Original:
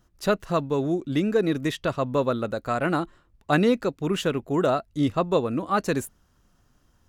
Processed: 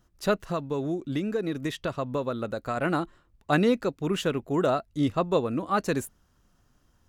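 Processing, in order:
0:00.43–0:02.77: downward compressor 3 to 1, threshold −24 dBFS, peak gain reduction 6 dB
level −2 dB

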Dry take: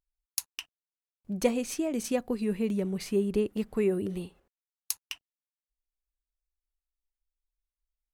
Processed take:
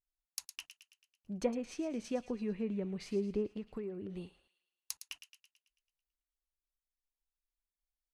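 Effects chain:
treble cut that deepens with the level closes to 1,600 Hz, closed at −23 dBFS
0:03.56–0:04.18: downward compressor 5 to 1, threshold −31 dBFS, peak gain reduction 9 dB
on a send: delay with a high-pass on its return 110 ms, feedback 52%, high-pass 1,800 Hz, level −10 dB
on the sum: level −7.5 dB

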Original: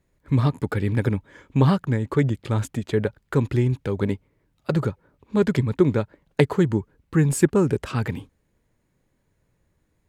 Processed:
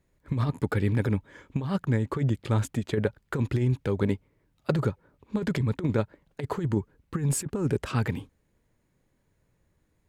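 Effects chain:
compressor whose output falls as the input rises −20 dBFS, ratio −0.5
level −3.5 dB

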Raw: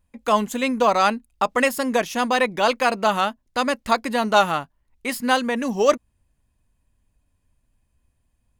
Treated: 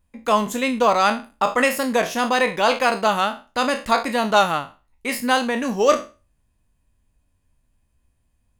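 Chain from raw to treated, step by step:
peak hold with a decay on every bin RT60 0.31 s

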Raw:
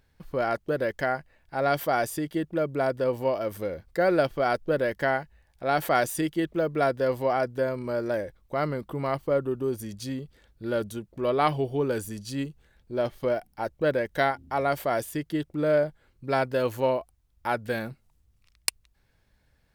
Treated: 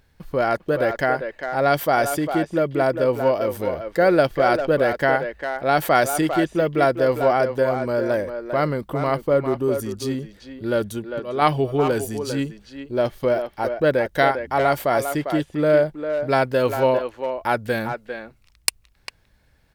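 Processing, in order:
0:10.73–0:11.42: volume swells 325 ms
far-end echo of a speakerphone 400 ms, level −7 dB
level +6 dB

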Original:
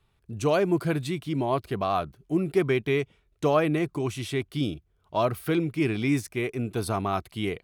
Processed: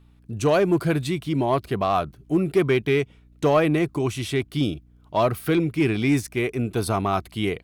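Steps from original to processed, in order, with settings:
mains hum 60 Hz, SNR 31 dB
in parallel at −3.5 dB: hard clipping −20 dBFS, distortion −15 dB

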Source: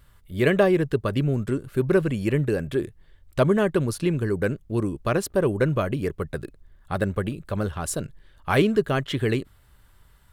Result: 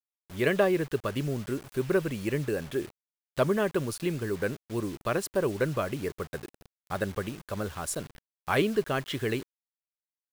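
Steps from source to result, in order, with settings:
bit reduction 7 bits
low-shelf EQ 250 Hz −7 dB
level −3.5 dB

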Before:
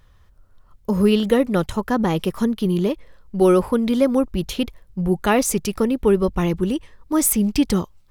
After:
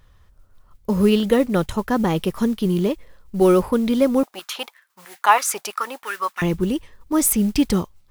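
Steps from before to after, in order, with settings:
noise that follows the level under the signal 29 dB
0:04.23–0:06.42: high-pass on a step sequencer 6.1 Hz 750–1,800 Hz

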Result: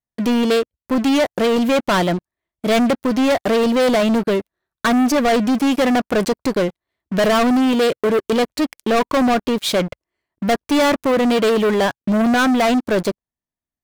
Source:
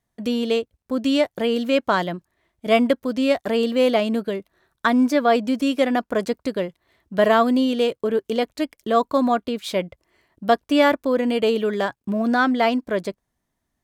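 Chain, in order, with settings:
leveller curve on the samples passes 5
level −7 dB

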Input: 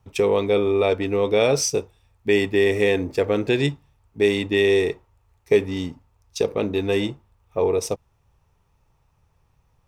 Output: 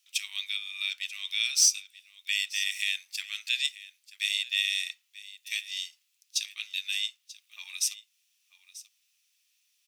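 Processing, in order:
inverse Chebyshev high-pass filter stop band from 490 Hz, stop band 80 dB
in parallel at +1.5 dB: downward compressor 4 to 1, threshold −45 dBFS, peak gain reduction 20 dB
on the sum: gain into a clipping stage and back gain 15.5 dB
single-tap delay 937 ms −17.5 dB
level +2.5 dB

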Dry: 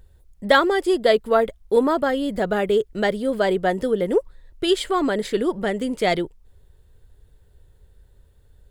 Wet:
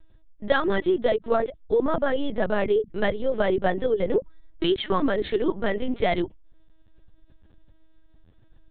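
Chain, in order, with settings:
downward compressor 6 to 1, threshold −19 dBFS, peak gain reduction 8.5 dB
mains-hum notches 50/100/150/200 Hz
linear-prediction vocoder at 8 kHz pitch kept
level +1 dB

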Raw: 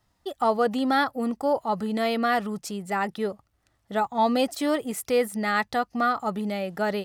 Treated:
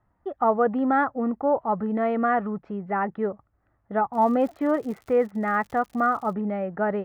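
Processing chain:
low-pass filter 1,700 Hz 24 dB per octave
0:04.13–0:06.32: surface crackle 120 per second −40 dBFS
level +1.5 dB

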